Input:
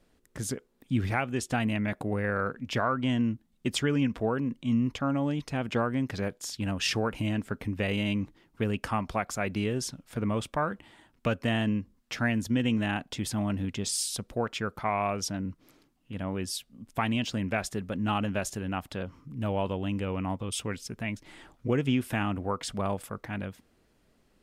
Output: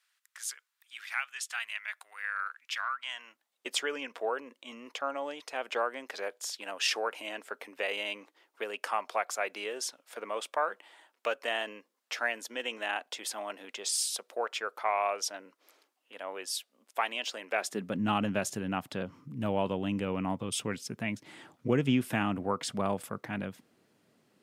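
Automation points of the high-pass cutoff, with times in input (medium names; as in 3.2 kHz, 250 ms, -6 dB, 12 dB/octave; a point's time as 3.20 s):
high-pass 24 dB/octave
2.92 s 1.3 kHz
3.66 s 470 Hz
17.50 s 470 Hz
17.95 s 120 Hz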